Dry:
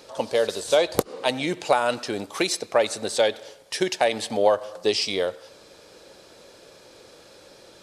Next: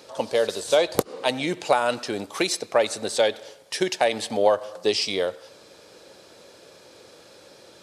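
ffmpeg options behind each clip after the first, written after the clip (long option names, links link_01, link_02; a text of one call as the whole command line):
ffmpeg -i in.wav -af "highpass=73" out.wav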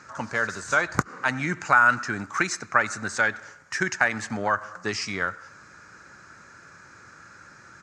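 ffmpeg -i in.wav -af "firequalizer=gain_entry='entry(130,0);entry(490,-21);entry(1400,8);entry(3300,-22);entry(6700,-4);entry(10000,-27)':delay=0.05:min_phase=1,volume=6.5dB" out.wav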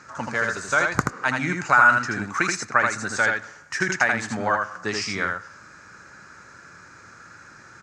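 ffmpeg -i in.wav -af "aecho=1:1:80:0.631,volume=1dB" out.wav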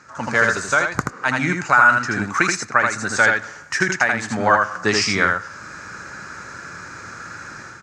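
ffmpeg -i in.wav -af "dynaudnorm=framelen=100:gausssize=5:maxgain=12dB,volume=-1dB" out.wav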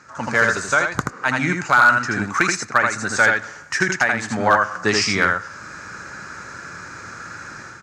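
ffmpeg -i in.wav -af "volume=6dB,asoftclip=hard,volume=-6dB" out.wav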